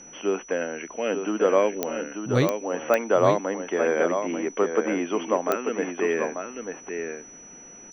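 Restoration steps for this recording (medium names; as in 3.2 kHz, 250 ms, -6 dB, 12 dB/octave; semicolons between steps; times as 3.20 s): de-click; band-stop 5.9 kHz, Q 30; inverse comb 890 ms -6.5 dB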